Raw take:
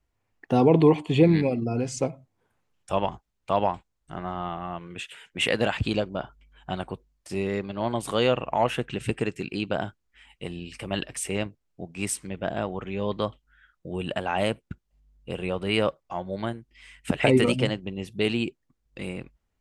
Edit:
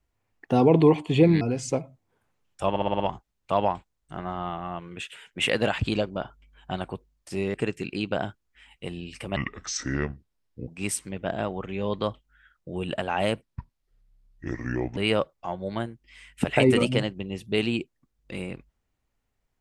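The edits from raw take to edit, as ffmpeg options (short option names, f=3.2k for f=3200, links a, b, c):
-filter_complex "[0:a]asplit=12[a][b][c][d][e][f][g][h][i][j][k][l];[a]atrim=end=1.412[m];[b]atrim=start=1.698:end=3.052[n];[c]atrim=start=2.988:end=3.052[o];[d]atrim=start=2.988:end=3.052[p];[e]atrim=start=2.988:end=3.052[q];[f]atrim=start=2.988:end=3.052[r];[g]atrim=start=2.988:end=7.532[s];[h]atrim=start=9.128:end=10.954[t];[i]atrim=start=10.95:end=11.86,asetpts=PTS-STARTPTS,asetrate=30429,aresample=44100[u];[j]atrim=start=11.856:end=14.604[v];[k]atrim=start=14.6:end=15.64,asetpts=PTS-STARTPTS,asetrate=29547,aresample=44100[w];[l]atrim=start=15.636[x];[m][n]acrossfade=d=0.004:c1=hsin:c2=hsin[y];[y][o]acrossfade=d=0.004:c1=hsin:c2=hsin[z];[z][p]acrossfade=d=0.004:c1=hsin:c2=hsin[aa];[aa][q]acrossfade=d=0.004:c1=hsin:c2=hsin[ab];[ab][r]acrossfade=d=0.004:c1=hsin:c2=hsin[ac];[ac][s]acrossfade=d=0.004:c1=hsin:c2=hsin[ad];[ad][t]acrossfade=d=0.004:c1=hsin:c2=hsin[ae];[ae][u]acrossfade=d=0.004:c1=hsin:c2=hsin[af];[af][v]acrossfade=d=0.004:c1=hsin:c2=hsin[ag];[ag][w]acrossfade=d=0.004:c1=hsin:c2=hsin[ah];[ah][x]acrossfade=d=0.004:c1=hsin:c2=hsin"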